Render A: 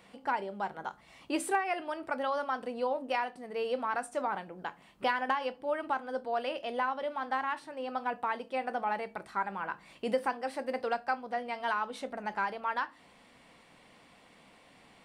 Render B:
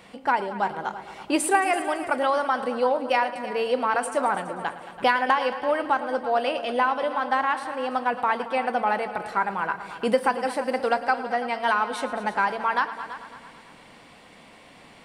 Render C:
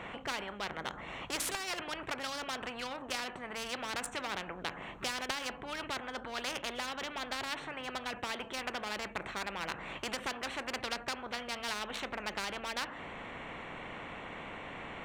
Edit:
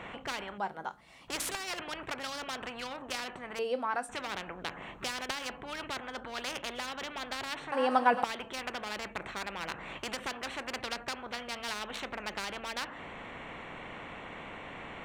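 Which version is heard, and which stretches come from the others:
C
0:00.58–0:01.28: punch in from A
0:03.59–0:04.09: punch in from A
0:07.72–0:08.24: punch in from B

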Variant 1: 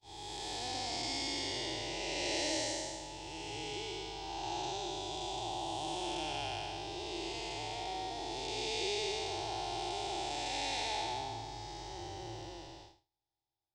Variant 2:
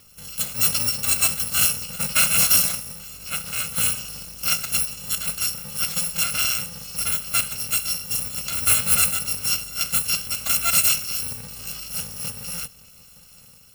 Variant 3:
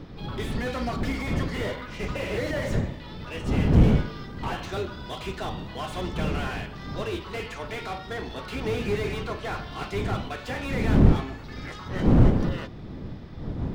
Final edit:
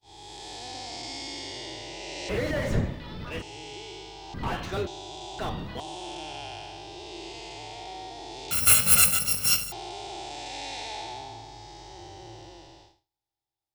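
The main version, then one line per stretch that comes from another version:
1
0:02.29–0:03.42: punch in from 3
0:04.34–0:04.87: punch in from 3
0:05.39–0:05.80: punch in from 3
0:08.51–0:09.72: punch in from 2

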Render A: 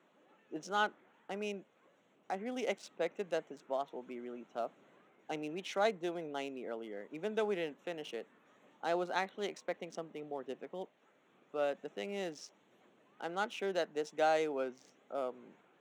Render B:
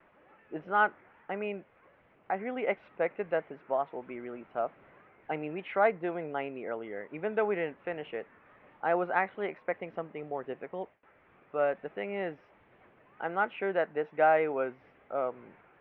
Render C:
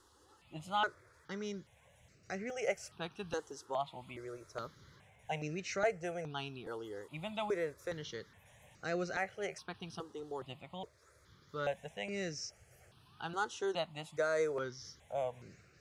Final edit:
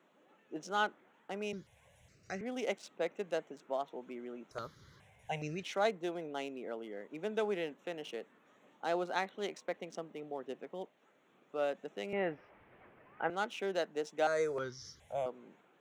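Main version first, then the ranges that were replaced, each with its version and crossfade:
A
0:01.53–0:02.41: punch in from C
0:04.51–0:05.63: punch in from C
0:12.13–0:13.30: punch in from B
0:14.27–0:15.26: punch in from C

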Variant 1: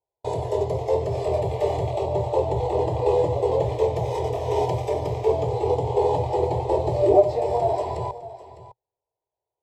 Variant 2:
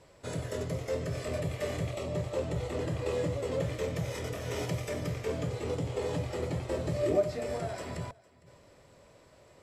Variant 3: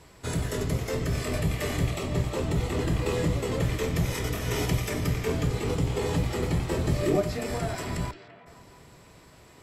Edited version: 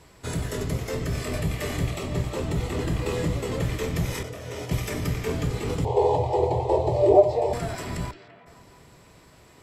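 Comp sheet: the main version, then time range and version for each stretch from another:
3
0:04.23–0:04.71: punch in from 2
0:05.85–0:07.53: punch in from 1

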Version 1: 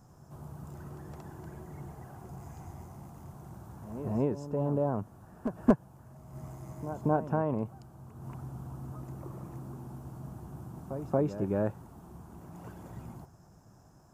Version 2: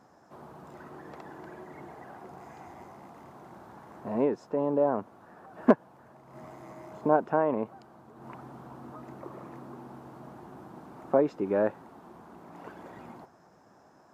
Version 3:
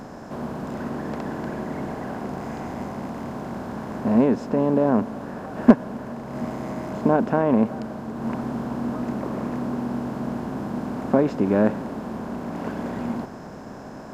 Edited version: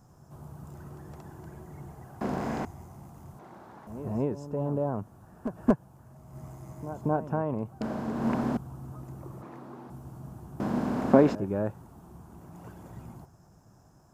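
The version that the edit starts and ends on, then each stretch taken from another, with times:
1
0:02.21–0:02.65: punch in from 3
0:03.39–0:03.87: punch in from 2
0:07.81–0:08.57: punch in from 3
0:09.42–0:09.90: punch in from 2
0:10.60–0:11.35: punch in from 3

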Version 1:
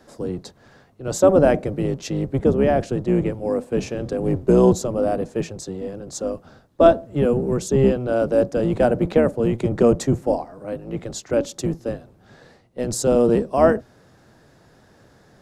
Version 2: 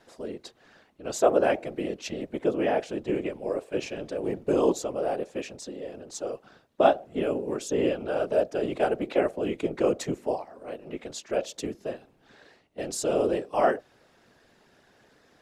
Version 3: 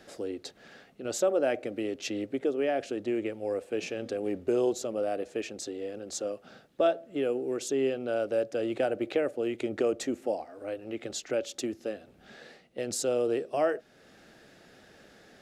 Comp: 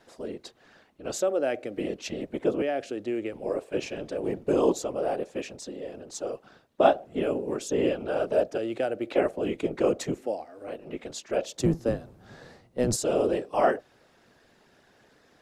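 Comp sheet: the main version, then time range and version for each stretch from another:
2
0:01.16–0:01.77: punch in from 3
0:02.62–0:03.33: punch in from 3
0:08.58–0:09.11: punch in from 3
0:10.21–0:10.67: punch in from 3
0:11.60–0:12.96: punch in from 1

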